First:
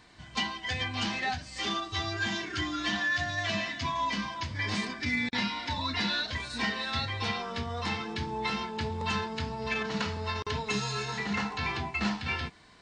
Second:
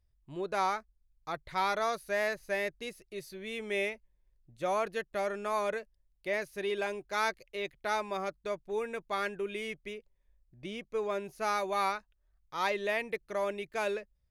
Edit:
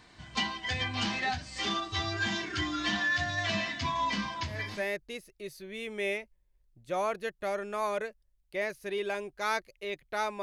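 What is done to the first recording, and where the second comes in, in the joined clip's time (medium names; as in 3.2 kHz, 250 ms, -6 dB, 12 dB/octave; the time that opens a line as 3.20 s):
first
4.65 s: go over to second from 2.37 s, crossfade 0.42 s linear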